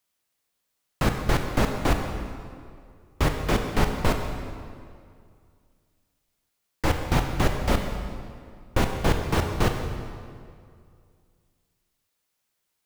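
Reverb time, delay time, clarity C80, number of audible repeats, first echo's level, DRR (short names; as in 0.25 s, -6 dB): 2.2 s, none, 6.5 dB, none, none, 4.0 dB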